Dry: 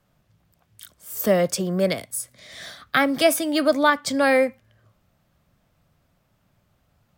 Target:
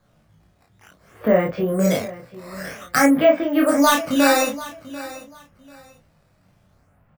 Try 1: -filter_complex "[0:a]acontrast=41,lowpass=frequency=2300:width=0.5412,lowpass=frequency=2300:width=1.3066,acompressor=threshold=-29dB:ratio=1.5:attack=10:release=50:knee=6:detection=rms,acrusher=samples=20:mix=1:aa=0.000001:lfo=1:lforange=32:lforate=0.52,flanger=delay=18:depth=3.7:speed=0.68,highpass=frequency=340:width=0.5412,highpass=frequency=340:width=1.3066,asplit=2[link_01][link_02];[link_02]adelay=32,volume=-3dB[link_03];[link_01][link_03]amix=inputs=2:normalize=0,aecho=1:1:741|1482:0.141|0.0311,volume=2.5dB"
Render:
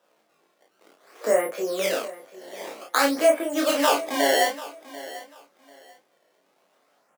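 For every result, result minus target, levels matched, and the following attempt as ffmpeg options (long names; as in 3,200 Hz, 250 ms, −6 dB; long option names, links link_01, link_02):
250 Hz band −6.0 dB; sample-and-hold swept by an LFO: distortion +7 dB; downward compressor: peak gain reduction +3.5 dB
-filter_complex "[0:a]acontrast=41,lowpass=frequency=2300:width=0.5412,lowpass=frequency=2300:width=1.3066,acompressor=threshold=-29dB:ratio=1.5:attack=10:release=50:knee=6:detection=rms,acrusher=samples=20:mix=1:aa=0.000001:lfo=1:lforange=32:lforate=0.52,flanger=delay=18:depth=3.7:speed=0.68,asplit=2[link_01][link_02];[link_02]adelay=32,volume=-3dB[link_03];[link_01][link_03]amix=inputs=2:normalize=0,aecho=1:1:741|1482:0.141|0.0311,volume=2.5dB"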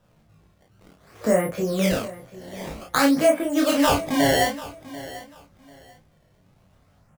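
sample-and-hold swept by an LFO: distortion +7 dB; downward compressor: peak gain reduction +3.5 dB
-filter_complex "[0:a]acontrast=41,lowpass=frequency=2300:width=0.5412,lowpass=frequency=2300:width=1.3066,acompressor=threshold=-29dB:ratio=1.5:attack=10:release=50:knee=6:detection=rms,acrusher=samples=8:mix=1:aa=0.000001:lfo=1:lforange=12.8:lforate=0.52,flanger=delay=18:depth=3.7:speed=0.68,asplit=2[link_01][link_02];[link_02]adelay=32,volume=-3dB[link_03];[link_01][link_03]amix=inputs=2:normalize=0,aecho=1:1:741|1482:0.141|0.0311,volume=2.5dB"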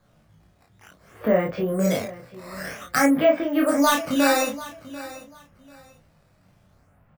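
downward compressor: peak gain reduction +3.5 dB
-filter_complex "[0:a]acontrast=41,lowpass=frequency=2300:width=0.5412,lowpass=frequency=2300:width=1.3066,acompressor=threshold=-19dB:ratio=1.5:attack=10:release=50:knee=6:detection=rms,acrusher=samples=8:mix=1:aa=0.000001:lfo=1:lforange=12.8:lforate=0.52,flanger=delay=18:depth=3.7:speed=0.68,asplit=2[link_01][link_02];[link_02]adelay=32,volume=-3dB[link_03];[link_01][link_03]amix=inputs=2:normalize=0,aecho=1:1:741|1482:0.141|0.0311,volume=2.5dB"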